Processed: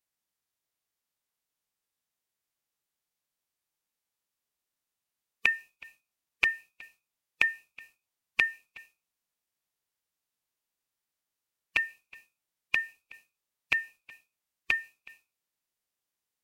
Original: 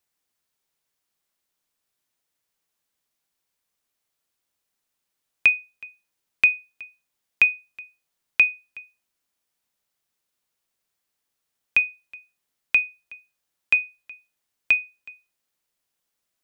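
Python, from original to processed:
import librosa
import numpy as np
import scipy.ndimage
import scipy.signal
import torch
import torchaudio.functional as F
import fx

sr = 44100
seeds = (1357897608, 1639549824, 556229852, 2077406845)

y = fx.dynamic_eq(x, sr, hz=230.0, q=3.1, threshold_db=-56.0, ratio=4.0, max_db=-4)
y = fx.pitch_keep_formants(y, sr, semitones=-5.5)
y = y * 10.0 ** (-7.0 / 20.0)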